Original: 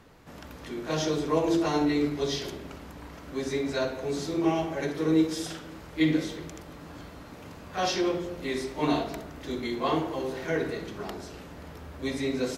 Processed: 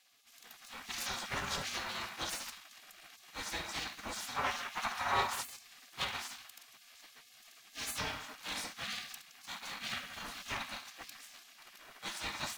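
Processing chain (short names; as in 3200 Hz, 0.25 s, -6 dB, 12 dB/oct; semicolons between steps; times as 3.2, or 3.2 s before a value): minimum comb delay 2.1 ms; spectral gate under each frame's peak -20 dB weak; 4.36–5.41 bell 990 Hz +10.5 dB 1.8 oct; in parallel at -12 dB: bit-crush 8-bit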